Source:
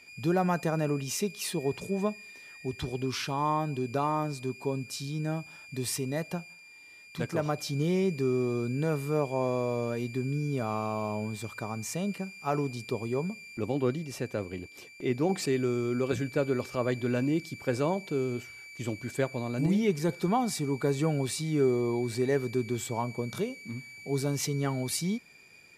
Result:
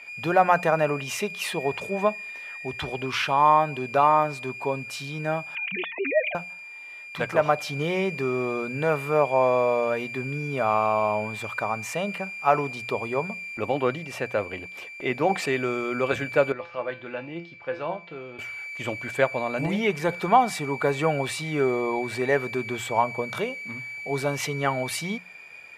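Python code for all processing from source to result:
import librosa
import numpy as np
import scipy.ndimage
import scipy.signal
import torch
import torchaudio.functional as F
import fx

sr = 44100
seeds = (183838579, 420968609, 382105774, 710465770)

y = fx.chain(x, sr, fx.sine_speech(),
    fx.comb(ms=4.4, depth=0.47), at=(5.55, 6.35))
y = fx.chain(y, sr, fx.lowpass(hz=4700.0, slope=24),
    fx.comb_fb(f0_hz=170.0, decay_s=0.3, harmonics='all', damping=0.0, mix_pct=80), at=(16.52, 18.39))
y = fx.band_shelf(y, sr, hz=1300.0, db=12.5, octaves=3.0)
y = fx.hum_notches(y, sr, base_hz=60, count=3)
y = y * 10.0 ** (-1.0 / 20.0)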